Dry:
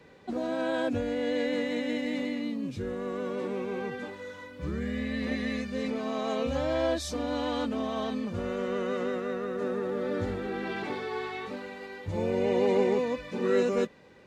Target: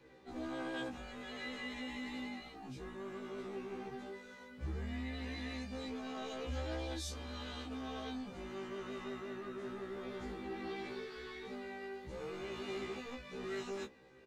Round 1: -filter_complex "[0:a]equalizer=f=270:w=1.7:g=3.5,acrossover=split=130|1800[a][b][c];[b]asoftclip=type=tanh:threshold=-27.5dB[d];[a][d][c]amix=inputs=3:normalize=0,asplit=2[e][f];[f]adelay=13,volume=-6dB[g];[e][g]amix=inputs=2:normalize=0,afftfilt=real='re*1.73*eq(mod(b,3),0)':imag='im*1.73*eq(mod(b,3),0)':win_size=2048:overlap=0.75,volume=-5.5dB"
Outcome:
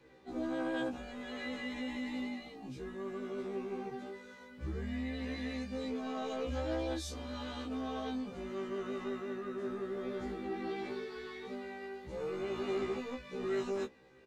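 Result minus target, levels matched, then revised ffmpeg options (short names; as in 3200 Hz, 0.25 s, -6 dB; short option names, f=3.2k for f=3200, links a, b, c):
soft clip: distortion -5 dB
-filter_complex "[0:a]equalizer=f=270:w=1.7:g=3.5,acrossover=split=130|1800[a][b][c];[b]asoftclip=type=tanh:threshold=-36.5dB[d];[a][d][c]amix=inputs=3:normalize=0,asplit=2[e][f];[f]adelay=13,volume=-6dB[g];[e][g]amix=inputs=2:normalize=0,afftfilt=real='re*1.73*eq(mod(b,3),0)':imag='im*1.73*eq(mod(b,3),0)':win_size=2048:overlap=0.75,volume=-5.5dB"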